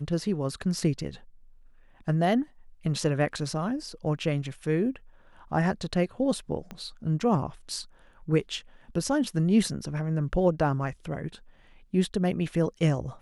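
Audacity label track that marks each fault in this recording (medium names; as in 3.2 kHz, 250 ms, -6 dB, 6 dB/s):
6.710000	6.710000	pop -24 dBFS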